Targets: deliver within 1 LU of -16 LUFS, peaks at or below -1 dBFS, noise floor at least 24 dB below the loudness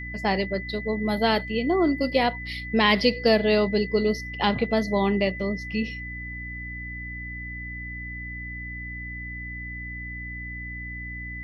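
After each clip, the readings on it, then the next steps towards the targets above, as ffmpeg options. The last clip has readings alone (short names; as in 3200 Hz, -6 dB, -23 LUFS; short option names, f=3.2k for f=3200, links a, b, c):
hum 60 Hz; harmonics up to 300 Hz; hum level -36 dBFS; steady tone 2000 Hz; tone level -35 dBFS; loudness -26.5 LUFS; peak -5.5 dBFS; loudness target -16.0 LUFS
-> -af "bandreject=f=60:t=h:w=6,bandreject=f=120:t=h:w=6,bandreject=f=180:t=h:w=6,bandreject=f=240:t=h:w=6,bandreject=f=300:t=h:w=6"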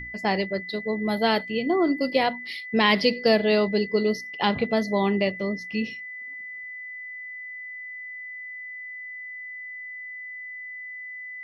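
hum none; steady tone 2000 Hz; tone level -35 dBFS
-> -af "bandreject=f=2k:w=30"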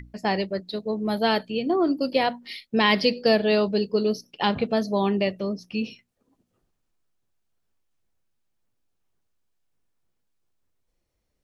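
steady tone none; loudness -24.0 LUFS; peak -5.5 dBFS; loudness target -16.0 LUFS
-> -af "volume=8dB,alimiter=limit=-1dB:level=0:latency=1"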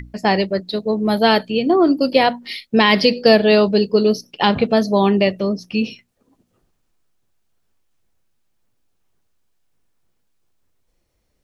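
loudness -16.5 LUFS; peak -1.0 dBFS; noise floor -68 dBFS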